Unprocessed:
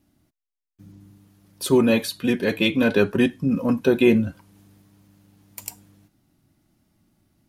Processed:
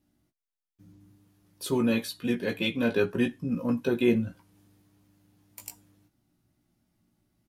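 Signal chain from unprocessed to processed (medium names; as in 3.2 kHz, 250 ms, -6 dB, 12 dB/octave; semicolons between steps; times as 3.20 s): doubling 17 ms -5.5 dB; trim -8.5 dB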